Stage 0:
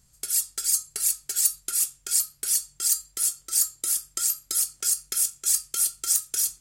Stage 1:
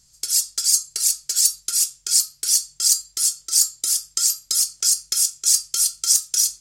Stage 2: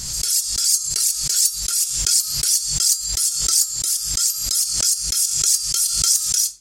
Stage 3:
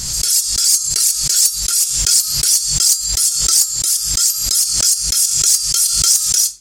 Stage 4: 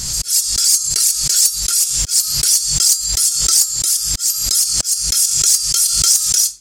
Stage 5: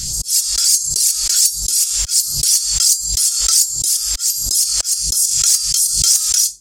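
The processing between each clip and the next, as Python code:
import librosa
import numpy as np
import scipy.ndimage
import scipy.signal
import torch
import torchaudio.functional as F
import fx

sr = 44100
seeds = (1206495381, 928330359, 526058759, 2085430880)

y1 = fx.peak_eq(x, sr, hz=5300.0, db=14.0, octaves=1.3)
y1 = y1 * librosa.db_to_amplitude(-2.0)
y2 = fx.pre_swell(y1, sr, db_per_s=36.0)
y2 = y2 * librosa.db_to_amplitude(-1.0)
y3 = 10.0 ** (-7.5 / 20.0) * np.tanh(y2 / 10.0 ** (-7.5 / 20.0))
y3 = y3 * librosa.db_to_amplitude(5.5)
y4 = fx.auto_swell(y3, sr, attack_ms=120.0)
y5 = fx.phaser_stages(y4, sr, stages=2, low_hz=160.0, high_hz=2100.0, hz=1.4, feedback_pct=25)
y5 = y5 * librosa.db_to_amplitude(-1.0)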